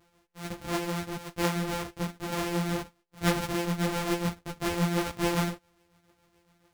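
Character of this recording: a buzz of ramps at a fixed pitch in blocks of 256 samples; tremolo triangle 7.1 Hz, depth 55%; a shimmering, thickened sound

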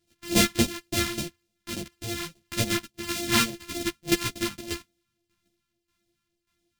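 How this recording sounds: a buzz of ramps at a fixed pitch in blocks of 128 samples; phasing stages 2, 3.5 Hz, lowest notch 520–1200 Hz; tremolo saw down 1.7 Hz, depth 75%; a shimmering, thickened sound

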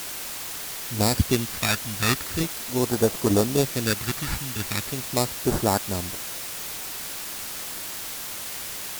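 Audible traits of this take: aliases and images of a low sample rate 3100 Hz, jitter 0%; phasing stages 2, 0.4 Hz, lowest notch 460–2400 Hz; a quantiser's noise floor 6-bit, dither triangular; Vorbis

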